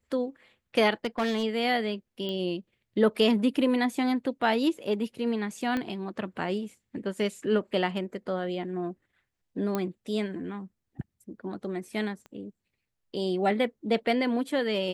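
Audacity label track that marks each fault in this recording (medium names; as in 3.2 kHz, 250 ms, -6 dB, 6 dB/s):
1.050000	1.440000	clipped -23.5 dBFS
2.290000	2.290000	pop -22 dBFS
5.770000	5.770000	pop -18 dBFS
9.750000	9.750000	pop -15 dBFS
12.260000	12.260000	pop -32 dBFS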